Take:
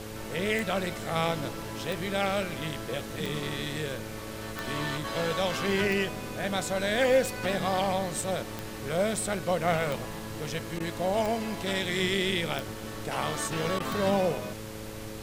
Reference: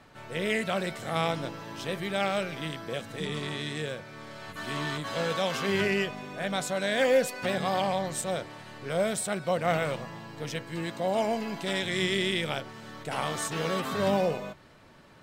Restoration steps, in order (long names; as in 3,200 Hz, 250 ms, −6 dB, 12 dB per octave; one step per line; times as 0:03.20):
click removal
hum removal 108.1 Hz, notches 5
repair the gap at 0:10.79/0:13.79, 10 ms
noise reduction from a noise print 6 dB